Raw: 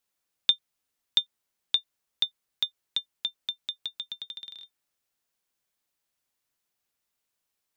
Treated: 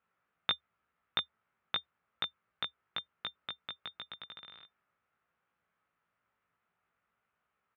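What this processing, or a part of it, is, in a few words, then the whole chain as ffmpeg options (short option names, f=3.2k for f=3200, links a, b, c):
bass cabinet: -filter_complex "[0:a]highpass=68,equalizer=f=75:t=q:w=4:g=7,equalizer=f=180:t=q:w=4:g=4,equalizer=f=300:t=q:w=4:g=-6,equalizer=f=1.3k:t=q:w=4:g=9,lowpass=f=2.3k:w=0.5412,lowpass=f=2.3k:w=1.3066,asplit=2[a][b];[b]adelay=18,volume=-3dB[c];[a][c]amix=inputs=2:normalize=0,volume=4.5dB"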